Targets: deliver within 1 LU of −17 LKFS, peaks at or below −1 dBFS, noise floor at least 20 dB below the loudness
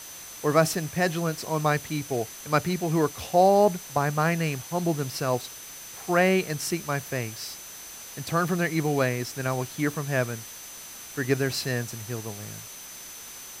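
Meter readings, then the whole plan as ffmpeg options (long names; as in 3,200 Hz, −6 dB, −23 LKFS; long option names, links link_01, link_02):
interfering tone 6,100 Hz; level of the tone −44 dBFS; background noise floor −42 dBFS; target noise floor −47 dBFS; integrated loudness −26.5 LKFS; sample peak −6.0 dBFS; target loudness −17.0 LKFS
→ -af "bandreject=frequency=6100:width=30"
-af "afftdn=noise_reduction=6:noise_floor=-42"
-af "volume=9.5dB,alimiter=limit=-1dB:level=0:latency=1"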